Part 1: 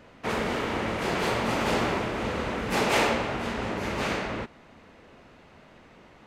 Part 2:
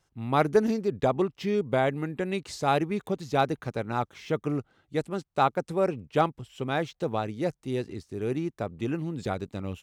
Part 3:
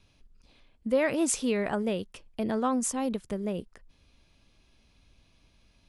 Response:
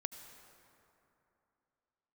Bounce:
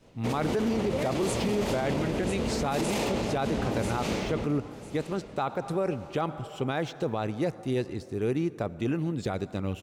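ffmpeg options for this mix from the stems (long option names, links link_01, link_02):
-filter_complex "[0:a]agate=range=-33dB:threshold=-48dB:ratio=3:detection=peak,equalizer=frequency=1500:width_type=o:width=1.9:gain=-13.5,volume=0dB,asplit=3[link_01][link_02][link_03];[link_02]volume=-4.5dB[link_04];[link_03]volume=-13dB[link_05];[1:a]volume=0dB,asplit=2[link_06][link_07];[link_07]volume=-6.5dB[link_08];[2:a]volume=-7dB,asplit=2[link_09][link_10];[link_10]volume=-7.5dB[link_11];[3:a]atrim=start_sample=2205[link_12];[link_04][link_08]amix=inputs=2:normalize=0[link_13];[link_13][link_12]afir=irnorm=-1:irlink=0[link_14];[link_05][link_11]amix=inputs=2:normalize=0,aecho=0:1:997|1994|2991|3988:1|0.28|0.0784|0.022[link_15];[link_01][link_06][link_09][link_14][link_15]amix=inputs=5:normalize=0,alimiter=limit=-19.5dB:level=0:latency=1:release=29"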